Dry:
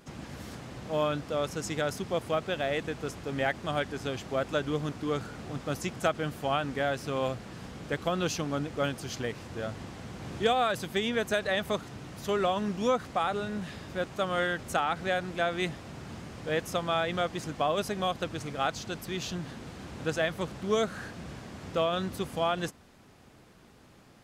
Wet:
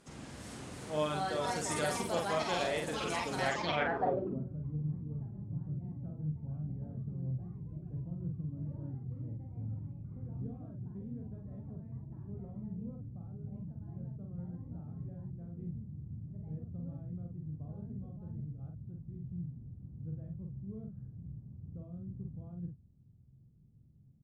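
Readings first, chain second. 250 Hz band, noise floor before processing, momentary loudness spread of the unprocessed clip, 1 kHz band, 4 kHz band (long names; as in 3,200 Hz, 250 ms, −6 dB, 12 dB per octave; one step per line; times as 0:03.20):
−6.5 dB, −56 dBFS, 13 LU, −8.5 dB, −10.0 dB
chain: delay with pitch and tempo change per echo 414 ms, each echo +4 semitones, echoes 3
double-tracking delay 46 ms −3 dB
low-pass filter sweep 9,300 Hz → 130 Hz, 0:03.46–0:04.50
level −7 dB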